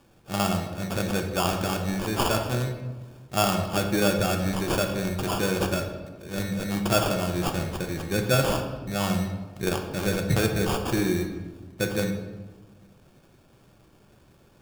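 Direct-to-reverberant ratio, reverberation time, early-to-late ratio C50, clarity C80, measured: 3.5 dB, 1.3 s, 7.0 dB, 8.5 dB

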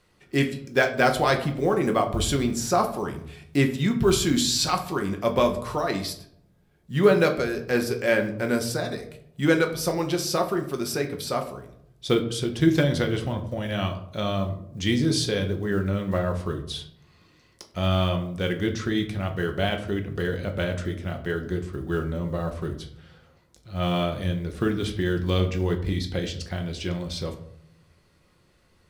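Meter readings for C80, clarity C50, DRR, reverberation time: 14.5 dB, 11.5 dB, 4.0 dB, 0.70 s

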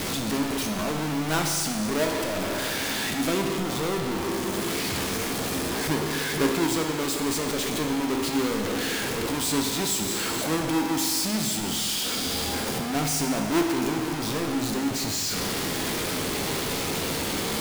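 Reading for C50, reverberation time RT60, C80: 5.0 dB, 1.8 s, 6.0 dB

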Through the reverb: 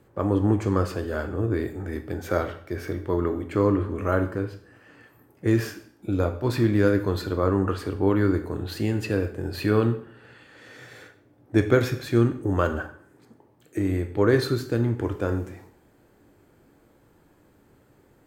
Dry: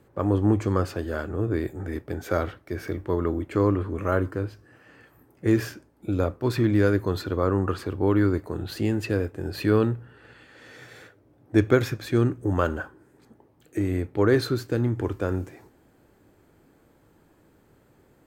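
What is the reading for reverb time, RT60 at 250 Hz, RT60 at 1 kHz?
0.60 s, 0.60 s, 0.60 s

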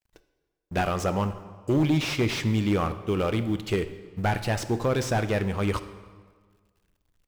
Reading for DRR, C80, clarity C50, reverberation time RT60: 11.5 dB, 14.0 dB, 12.5 dB, 1.6 s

